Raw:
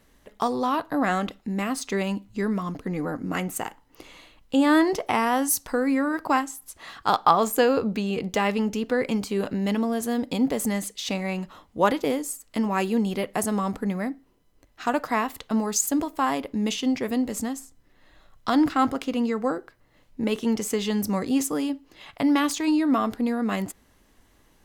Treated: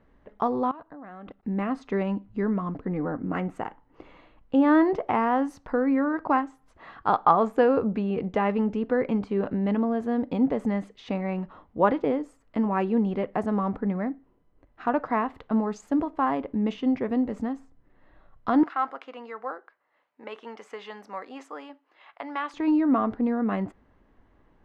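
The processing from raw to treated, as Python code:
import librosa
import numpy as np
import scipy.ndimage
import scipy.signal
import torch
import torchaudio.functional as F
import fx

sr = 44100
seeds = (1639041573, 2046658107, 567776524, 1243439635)

y = fx.level_steps(x, sr, step_db=21, at=(0.71, 1.43))
y = fx.highpass(y, sr, hz=870.0, slope=12, at=(18.63, 22.54))
y = scipy.signal.sosfilt(scipy.signal.butter(2, 1500.0, 'lowpass', fs=sr, output='sos'), y)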